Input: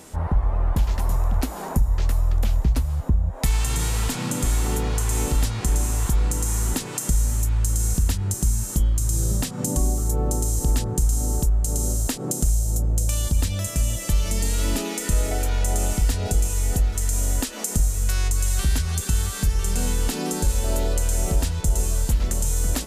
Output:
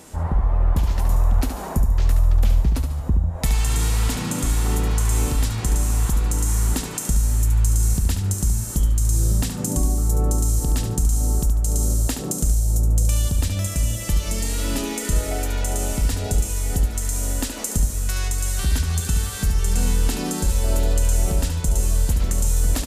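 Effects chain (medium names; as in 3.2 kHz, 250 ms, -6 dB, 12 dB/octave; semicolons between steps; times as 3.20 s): feedback delay 72 ms, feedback 36%, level -7.5 dB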